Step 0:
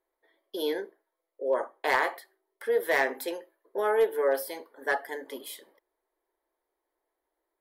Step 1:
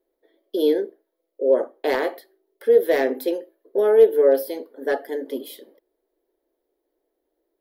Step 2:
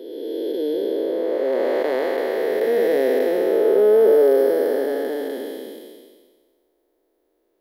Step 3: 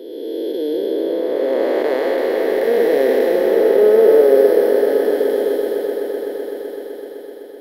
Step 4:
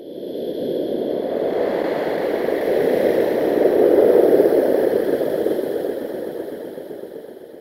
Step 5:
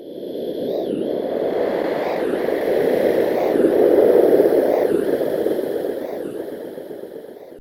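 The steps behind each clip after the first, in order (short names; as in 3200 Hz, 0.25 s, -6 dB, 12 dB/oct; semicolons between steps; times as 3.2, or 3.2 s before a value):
ten-band EQ 125 Hz -12 dB, 250 Hz +9 dB, 500 Hz +5 dB, 1000 Hz -12 dB, 2000 Hz -7 dB, 8000 Hz -12 dB; gain +7 dB
time blur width 0.862 s; gain +8.5 dB
swelling echo 0.127 s, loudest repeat 5, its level -13 dB; gain +2.5 dB
whisperiser; gain -3 dB
record warp 45 rpm, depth 250 cents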